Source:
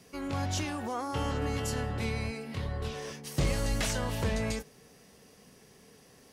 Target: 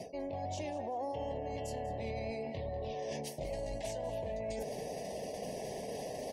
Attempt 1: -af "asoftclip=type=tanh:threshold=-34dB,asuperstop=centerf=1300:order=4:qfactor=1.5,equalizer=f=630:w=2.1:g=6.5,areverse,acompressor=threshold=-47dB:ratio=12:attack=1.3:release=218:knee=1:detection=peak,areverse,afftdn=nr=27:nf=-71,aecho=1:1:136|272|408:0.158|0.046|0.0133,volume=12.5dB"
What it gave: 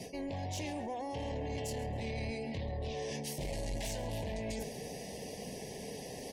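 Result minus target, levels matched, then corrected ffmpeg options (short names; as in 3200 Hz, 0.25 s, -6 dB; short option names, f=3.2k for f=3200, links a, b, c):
echo 58 ms early; soft clip: distortion +7 dB; 500 Hz band -3.0 dB
-af "asoftclip=type=tanh:threshold=-26.5dB,asuperstop=centerf=1300:order=4:qfactor=1.5,equalizer=f=630:w=2.1:g=18.5,areverse,acompressor=threshold=-47dB:ratio=12:attack=1.3:release=218:knee=1:detection=peak,areverse,afftdn=nr=27:nf=-71,aecho=1:1:194|388|582:0.158|0.046|0.0133,volume=12.5dB"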